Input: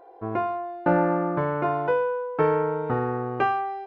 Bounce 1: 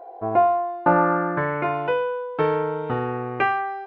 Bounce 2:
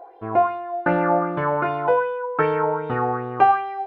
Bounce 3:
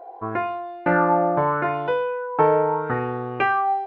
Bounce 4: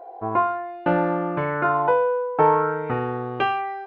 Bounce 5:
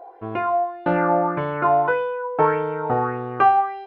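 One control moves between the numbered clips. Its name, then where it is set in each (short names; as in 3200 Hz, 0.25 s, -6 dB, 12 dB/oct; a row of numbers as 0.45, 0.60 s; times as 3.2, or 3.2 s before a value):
LFO bell, rate: 0.2, 2.6, 0.78, 0.46, 1.7 Hz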